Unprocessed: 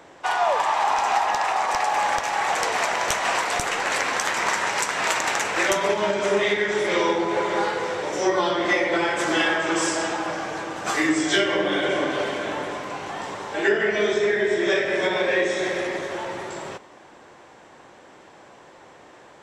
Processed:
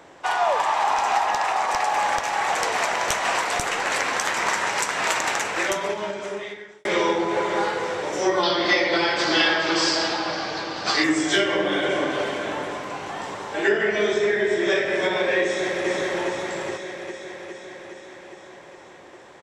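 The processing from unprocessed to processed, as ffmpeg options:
-filter_complex "[0:a]asettb=1/sr,asplit=3[s0][s1][s2];[s0]atrim=end=8.434[s3];[s1]atrim=start=8.43:end=11.04,asetpts=PTS-STARTPTS,afade=t=in:d=0.004:c=qsin,afade=t=out:st=2.606:d=0.004:c=qsin,lowpass=f=4600:t=q:w=6.1[s4];[s2]atrim=start=11.036[s5];[s3][s4]acrossfade=d=0.004:c1=hsin:c2=qsin[s6];[s6][s5]acrossfade=d=0.004:c1=qsin:c2=hsin,asplit=2[s7][s8];[s8]afade=t=in:st=15.43:d=0.01,afade=t=out:st=15.88:d=0.01,aecho=0:1:410|820|1230|1640|2050|2460|2870|3280|3690|4100|4510|4920:0.749894|0.524926|0.367448|0.257214|0.18005|0.126035|0.0882243|0.061757|0.0432299|0.0302609|0.0211827|0.0148279[s9];[s7][s9]amix=inputs=2:normalize=0,asplit=2[s10][s11];[s10]atrim=end=6.85,asetpts=PTS-STARTPTS,afade=t=out:st=5.25:d=1.6[s12];[s11]atrim=start=6.85,asetpts=PTS-STARTPTS,afade=t=in:d=0.004:c=hsin[s13];[s12][s13]concat=n=2:v=0:a=1"

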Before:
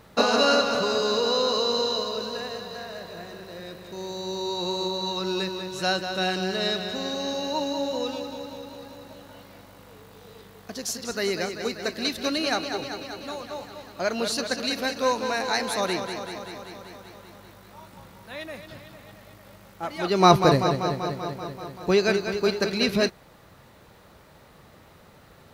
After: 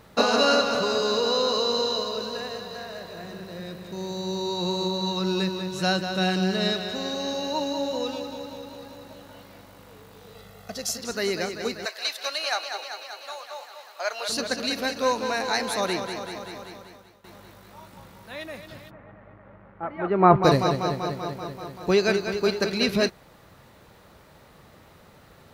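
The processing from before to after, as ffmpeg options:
-filter_complex "[0:a]asettb=1/sr,asplit=3[s0][s1][s2];[s0]atrim=end=3.234[s3];[s1]atrim=start=3.23:end=6.73,asetpts=PTS-STARTPTS,afade=t=in:d=0.004:c=qsin,afade=t=out:st=3.496:d=0.004:c=qsin,equalizer=f=180:t=o:w=0.77:g=7.5[s4];[s2]atrim=start=6.726[s5];[s3][s4]acrossfade=d=0.004:c1=hsin:c2=qsin[s6];[s6][s5]acrossfade=d=0.004:c1=qsin:c2=hsin,asettb=1/sr,asplit=3[s7][s8][s9];[s7]atrim=end=10.354[s10];[s8]atrim=start=10.35:end=10.99,asetpts=PTS-STARTPTS,afade=t=in:d=0.004:c=qsin,afade=t=out:st=0.636:d=0.004:c=qsin,aecho=1:1:1.5:0.65,atrim=end_sample=28224[s11];[s9]atrim=start=10.986[s12];[s10][s11]acrossfade=d=0.004:c1=hsin:c2=qsin[s13];[s13][s12]acrossfade=d=0.004:c1=qsin:c2=hsin,asettb=1/sr,asplit=3[s14][s15][s16];[s14]atrim=end=11.854[s17];[s15]atrim=start=11.85:end=14.29,asetpts=PTS-STARTPTS,afade=t=in:d=0.004:c=qsin,afade=t=out:st=2.436:d=0.004:c=qsin,highpass=f=620:w=0.5412,highpass=f=620:w=1.3066[s18];[s16]atrim=start=14.286[s19];[s17][s18]acrossfade=d=0.004:c1=hsin:c2=qsin[s20];[s20][s19]acrossfade=d=0.004:c1=qsin:c2=hsin,asplit=3[s21][s22][s23];[s21]afade=t=out:st=18.89:d=0.02[s24];[s22]lowpass=f=1900:w=0.5412,lowpass=f=1900:w=1.3066,afade=t=in:st=18.89:d=0.02,afade=t=out:st=20.43:d=0.02[s25];[s23]afade=t=in:st=20.43:d=0.02[s26];[s24][s25][s26]amix=inputs=3:normalize=0,asplit=2[s27][s28];[s27]atrim=end=17.24,asetpts=PTS-STARTPTS,afade=t=out:st=16.65:d=0.59:silence=0.158489[s29];[s28]atrim=start=17.24,asetpts=PTS-STARTPTS,afade=t=in:d=0.004:c=hsin:silence=0.158489[s30];[s29][s30]concat=n=2:v=0:a=1"

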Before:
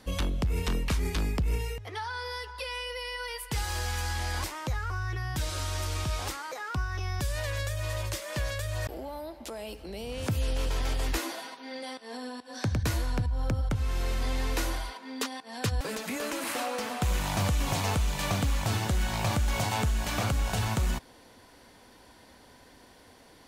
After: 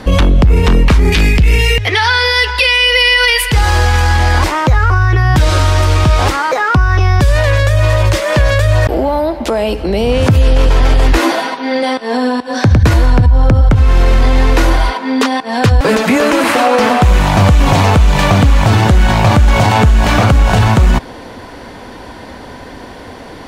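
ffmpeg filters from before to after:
-filter_complex "[0:a]asettb=1/sr,asplit=3[s0][s1][s2];[s0]atrim=end=1.124[s3];[s1]atrim=start=1.12:end=3.52,asetpts=PTS-STARTPTS,afade=t=in:d=0.004:c=qsin,afade=t=out:st=2.396:d=0.004:c=qsin,highshelf=f=1600:t=q:w=1.5:g=10[s4];[s2]atrim=start=3.516[s5];[s3][s4]acrossfade=d=0.004:c1=hsin:c2=qsin[s6];[s6][s5]acrossfade=d=0.004:c1=qsin:c2=hsin,lowpass=f=2000:p=1,alimiter=level_in=21.1:limit=0.891:release=50:level=0:latency=1,volume=0.891"

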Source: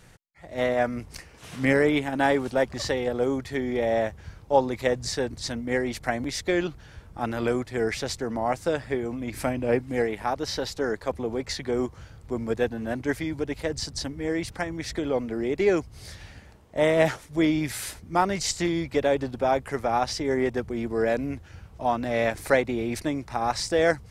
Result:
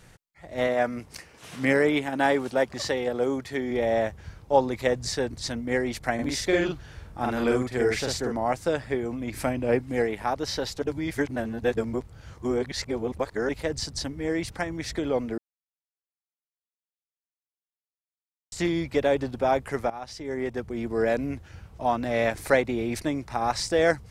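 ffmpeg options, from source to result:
-filter_complex "[0:a]asettb=1/sr,asplit=3[s0][s1][s2];[s0]atrim=end=0.674[s3];[s1]atrim=start=0.67:end=3.71,asetpts=PTS-STARTPTS,afade=t=in:d=0.004:c=qsin,afade=t=out:st=3.036:d=0.004:c=qsin,highpass=f=160:p=1[s4];[s2]atrim=start=3.706[s5];[s3][s4]acrossfade=d=0.004:c1=hsin:c2=qsin[s6];[s6][s5]acrossfade=d=0.004:c1=qsin:c2=hsin,asettb=1/sr,asplit=3[s7][s8][s9];[s7]atrim=end=6.144[s10];[s8]atrim=start=6.14:end=8.32,asetpts=PTS-STARTPTS,afade=t=in:d=0.004:c=qsin,afade=t=out:st=2.176:d=0.004:c=qsin,asplit=2[s11][s12];[s12]adelay=47,volume=0.794[s13];[s11][s13]amix=inputs=2:normalize=0,atrim=end_sample=96138[s14];[s9]atrim=start=8.316[s15];[s10][s14]acrossfade=d=0.004:c1=hsin:c2=qsin[s16];[s16][s15]acrossfade=d=0.004:c1=qsin:c2=hsin,asplit=6[s17][s18][s19][s20][s21][s22];[s17]atrim=end=10.822[s23];[s18]atrim=start=10.818:end=13.492,asetpts=PTS-STARTPTS,areverse[s24];[s19]atrim=start=13.488:end=15.38,asetpts=PTS-STARTPTS,afade=t=out:st=1.888:d=0.004:c=hsin[s25];[s20]atrim=start=15.38:end=18.52,asetpts=PTS-STARTPTS,volume=0[s26];[s21]atrim=start=18.52:end=19.9,asetpts=PTS-STARTPTS,afade=t=in:d=0.004:c=hsin,afade=t=out:st=1.376:d=0.004:c=hsin:silence=0.133352[s27];[s22]atrim=start=19.9,asetpts=PTS-STARTPTS,afade=t=in:d=1.09:silence=0.133352[s28];[s23][s24]acrossfade=d=0.004:c1=hsin:c2=hsin[s29];[s25][s26][s27][s28]concat=n=4:v=0:a=1[s30];[s29][s30]acrossfade=d=0.004:c1=hsin:c2=hsin"

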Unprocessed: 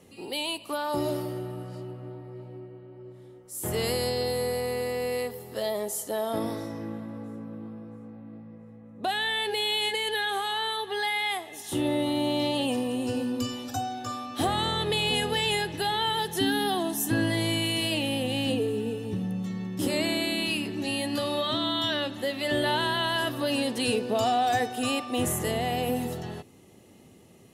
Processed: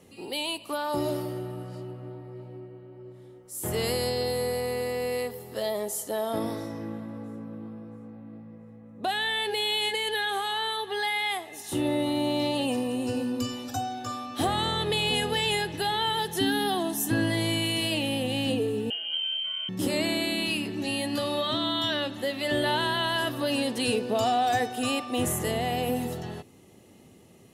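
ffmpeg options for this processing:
-filter_complex "[0:a]asettb=1/sr,asplit=3[s0][s1][s2];[s0]atrim=end=11.454[s3];[s1]atrim=start=11.45:end=13.69,asetpts=PTS-STARTPTS,afade=t=in:d=0.004:c=qsin,afade=t=out:st=2.236:d=0.004:c=qsin,bandreject=f=3300:w=11[s4];[s2]atrim=start=13.686[s5];[s3][s4]acrossfade=d=0.004:c1=hsin:c2=qsin[s6];[s6][s5]acrossfade=d=0.004:c1=qsin:c2=hsin,asettb=1/sr,asplit=3[s7][s8][s9];[s7]atrim=end=18.904[s10];[s8]atrim=start=18.9:end=19.69,asetpts=PTS-STARTPTS,afade=t=in:d=0.004:c=qsin,afade=t=out:st=0.786:d=0.004:c=qsin,lowpass=f=2800:t=q:w=0.5098,lowpass=f=2800:t=q:w=0.6013,lowpass=f=2800:t=q:w=0.9,lowpass=f=2800:t=q:w=2.563,afreqshift=-3300[s11];[s9]atrim=start=19.686[s12];[s10][s11]acrossfade=d=0.004:c1=hsin:c2=qsin[s13];[s13][s12]acrossfade=d=0.004:c1=qsin:c2=hsin"

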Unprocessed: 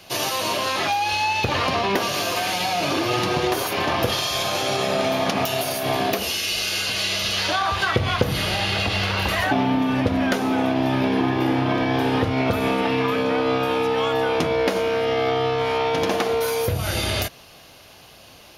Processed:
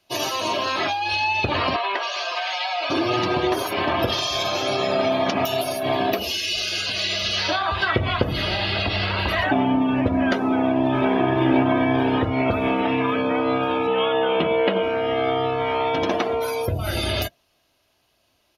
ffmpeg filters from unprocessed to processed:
-filter_complex "[0:a]asettb=1/sr,asplit=3[s0][s1][s2];[s0]atrim=end=1.764[s3];[s1]atrim=start=1.76:end=2.9,asetpts=PTS-STARTPTS,afade=t=in:d=0.004:c=qsin,afade=t=out:st=1.136:d=0.004:c=qsin,highpass=720,lowpass=6000[s4];[s2]atrim=start=2.896[s5];[s3][s4]acrossfade=d=0.004:c1=hsin:c2=qsin[s6];[s6][s5]acrossfade=d=0.004:c1=qsin:c2=hsin,asplit=2[s7][s8];[s8]afade=t=in:st=10.42:d=0.01,afade=t=out:st=11.1:d=0.01,aecho=0:1:520|1040|1560|2080|2600:0.794328|0.278015|0.0973052|0.0340568|0.0119199[s9];[s7][s9]amix=inputs=2:normalize=0,asettb=1/sr,asplit=3[s10][s11][s12];[s10]atrim=end=13.874[s13];[s11]atrim=start=13.87:end=14.83,asetpts=PTS-STARTPTS,afade=t=in:d=0.004:c=qsin,afade=t=out:st=0.956:d=0.004:c=qsin,highpass=110,equalizer=f=120:t=q:w=4:g=-7,equalizer=f=190:t=q:w=4:g=9,equalizer=f=270:t=q:w=4:g=-7,equalizer=f=470:t=q:w=4:g=4,equalizer=f=3000:t=q:w=4:g=5,lowpass=f=4100:w=0.5412,lowpass=f=4100:w=1.3066[s14];[s12]atrim=start=14.826[s15];[s13][s14]acrossfade=d=0.004:c1=hsin:c2=qsin[s16];[s16][s15]acrossfade=d=0.004:c1=qsin:c2=hsin,afftdn=nr=20:nf=-31,aecho=1:1:3.1:0.32"

